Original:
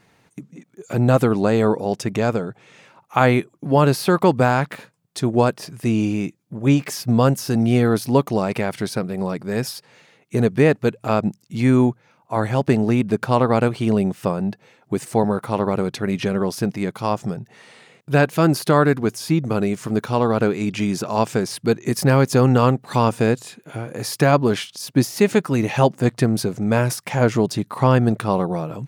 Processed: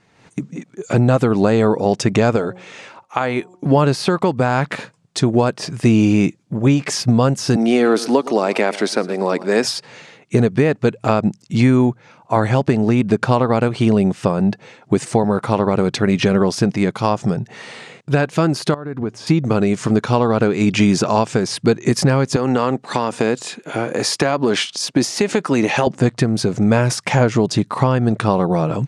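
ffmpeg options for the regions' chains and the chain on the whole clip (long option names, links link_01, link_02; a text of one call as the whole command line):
ffmpeg -i in.wav -filter_complex "[0:a]asettb=1/sr,asplit=3[link_01][link_02][link_03];[link_01]atrim=end=2.364[link_04];[link_02]atrim=start=2.36:end=3.66,asetpts=PTS-STARTPTS,afade=type=in:duration=0.004:curve=qsin,afade=type=out:start_time=1.296:duration=0.004:curve=qsin,equalizer=frequency=150:width_type=o:width=0.97:gain=-9.5,bandreject=frequency=181.7:width_type=h:width=4,bandreject=frequency=363.4:width_type=h:width=4,bandreject=frequency=545.1:width_type=h:width=4,bandreject=frequency=726.8:width_type=h:width=4,bandreject=frequency=908.5:width_type=h:width=4,bandreject=frequency=1090.2:width_type=h:width=4[link_05];[link_03]atrim=start=3.656[link_06];[link_04][link_05]acrossfade=duration=0.004:curve1=hsin:curve2=qsin[link_07];[link_07][link_06]acrossfade=duration=0.004:curve1=qsin:curve2=hsin,asettb=1/sr,asplit=3[link_08][link_09][link_10];[link_08]atrim=end=7.564[link_11];[link_09]atrim=start=7.56:end=9.65,asetpts=PTS-STARTPTS,afade=type=in:duration=0.004:curve=qsin,afade=type=out:start_time=2.086:duration=0.004:curve=qsin,highpass=frequency=250:width=0.5412,highpass=frequency=250:width=1.3066,aecho=1:1:114|228|342:0.112|0.0449|0.018,atrim=end_sample=92169[link_12];[link_10]atrim=start=9.646[link_13];[link_11][link_12]acrossfade=duration=0.004:curve1=hsin:curve2=qsin[link_14];[link_14][link_13]acrossfade=duration=0.004:curve1=qsin:curve2=hsin,asettb=1/sr,asplit=3[link_15][link_16][link_17];[link_15]atrim=end=18.744[link_18];[link_16]atrim=start=18.74:end=19.27,asetpts=PTS-STARTPTS,afade=type=in:duration=0.004:curve=qsin,afade=type=out:start_time=0.526:duration=0.004:curve=qsin,lowpass=frequency=1300:poles=1,acompressor=threshold=-29dB:ratio=6:attack=3.2:release=140:knee=1:detection=peak[link_19];[link_17]atrim=start=19.266[link_20];[link_18][link_19]acrossfade=duration=0.004:curve1=hsin:curve2=qsin[link_21];[link_21][link_20]acrossfade=duration=0.004:curve1=qsin:curve2=hsin,asettb=1/sr,asplit=3[link_22][link_23][link_24];[link_22]atrim=end=22.364[link_25];[link_23]atrim=start=22.36:end=25.87,asetpts=PTS-STARTPTS,afade=type=in:duration=0.004:curve=qsin,afade=type=out:start_time=3.506:duration=0.004:curve=qsin,highpass=220,acompressor=threshold=-17dB:ratio=5:attack=3.2:release=140:knee=1:detection=peak[link_26];[link_24]atrim=start=25.866[link_27];[link_25][link_26]acrossfade=duration=0.004:curve1=hsin:curve2=qsin[link_28];[link_28][link_27]acrossfade=duration=0.004:curve1=qsin:curve2=hsin,acompressor=threshold=-19dB:ratio=6,lowpass=frequency=8500:width=0.5412,lowpass=frequency=8500:width=1.3066,dynaudnorm=framelen=140:gausssize=3:maxgain=12.5dB,volume=-1dB" out.wav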